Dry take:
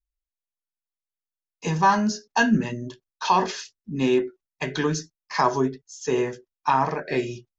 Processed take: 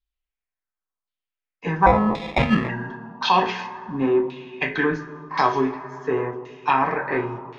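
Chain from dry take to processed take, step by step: two-slope reverb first 0.22 s, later 2.7 s, from -18 dB, DRR 3.5 dB; 1.86–2.69 sample-rate reducer 1500 Hz, jitter 0%; LFO low-pass saw down 0.93 Hz 980–3800 Hz

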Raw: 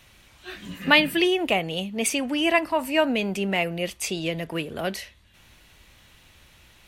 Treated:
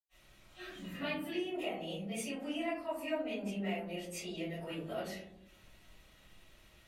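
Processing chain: compressor 2.5:1, threshold -33 dBFS, peak gain reduction 14 dB; reverb RT60 0.85 s, pre-delay 90 ms, DRR -60 dB; gain +10 dB

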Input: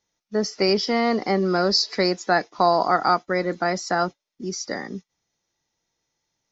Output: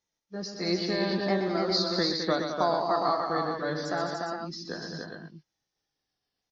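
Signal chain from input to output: repeated pitch sweeps -3.5 st, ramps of 1.284 s; tapped delay 0.123/0.211/0.293/0.408 s -8/-8/-3.5/-6.5 dB; gain -8 dB

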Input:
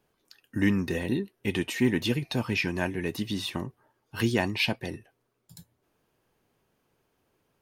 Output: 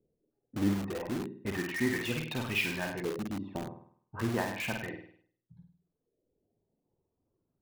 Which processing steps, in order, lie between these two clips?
reverb removal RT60 1.4 s; low-pass opened by the level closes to 370 Hz, open at -26.5 dBFS; flutter echo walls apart 8.7 m, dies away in 0.56 s; LFO low-pass saw up 0.33 Hz 470–4600 Hz; in parallel at -5.5 dB: wrapped overs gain 26.5 dB; on the sum: gain -7 dB

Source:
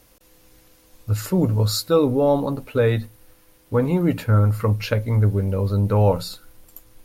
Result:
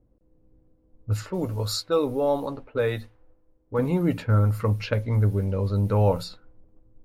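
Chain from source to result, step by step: low-pass opened by the level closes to 340 Hz, open at -16 dBFS; 1.23–3.79 bell 160 Hz -9 dB 1.7 oct; gain -3.5 dB

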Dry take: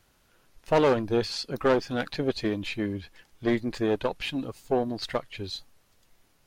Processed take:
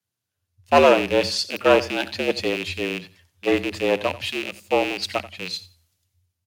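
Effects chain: rattling part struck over -37 dBFS, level -20 dBFS; high shelf 4200 Hz +5.5 dB; notches 60/120 Hz; frequency shift +83 Hz; feedback echo 88 ms, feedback 24%, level -15 dB; three-band expander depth 70%; gain +3.5 dB

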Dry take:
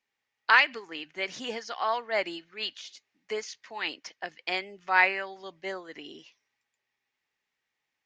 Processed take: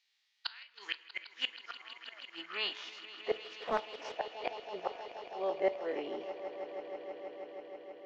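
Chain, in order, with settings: spectral dilation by 60 ms; band-pass sweep 4100 Hz -> 590 Hz, 0.41–3.44; flipped gate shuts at -30 dBFS, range -38 dB; swelling echo 0.16 s, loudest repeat 5, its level -15.5 dB; on a send at -14 dB: reverb RT60 0.85 s, pre-delay 9 ms; 3.44–4.15 on the sum: Doppler distortion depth 0.41 ms; gain +10.5 dB

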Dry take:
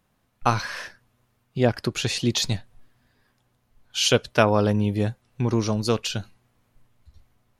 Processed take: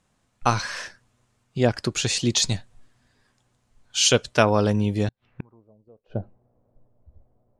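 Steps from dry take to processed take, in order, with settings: low-pass sweep 7900 Hz -> 590 Hz, 4.99–5.65; 5.08–6.15 flipped gate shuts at -19 dBFS, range -34 dB

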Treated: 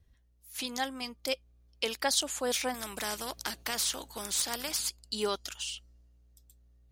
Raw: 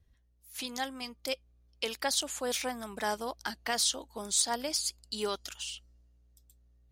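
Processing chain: 2.74–4.89 spectral compressor 2:1; gain +2 dB

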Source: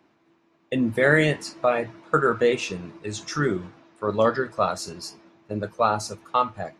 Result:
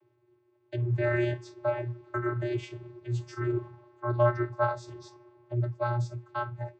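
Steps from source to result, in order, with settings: 3.53–5.54 bell 960 Hz +10 dB 1.1 oct; vocoder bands 16, square 120 Hz; gain -6.5 dB

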